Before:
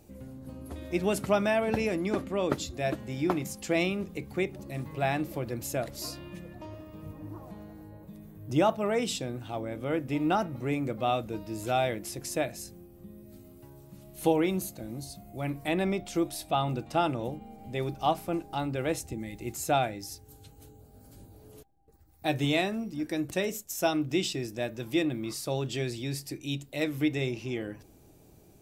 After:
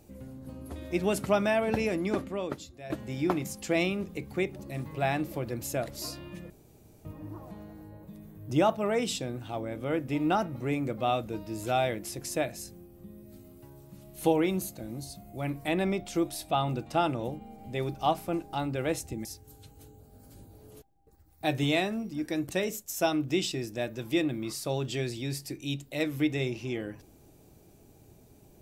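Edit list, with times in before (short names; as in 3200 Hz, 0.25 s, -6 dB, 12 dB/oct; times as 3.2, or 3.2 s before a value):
2.19–2.9 fade out quadratic, to -13.5 dB
6.5–7.05 room tone
19.25–20.06 cut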